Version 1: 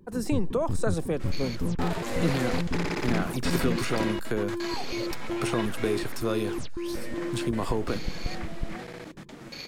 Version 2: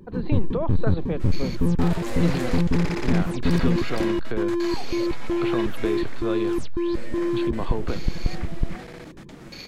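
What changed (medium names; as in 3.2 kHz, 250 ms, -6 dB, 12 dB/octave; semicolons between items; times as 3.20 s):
speech: add Chebyshev low-pass 4.5 kHz, order 10; first sound +8.5 dB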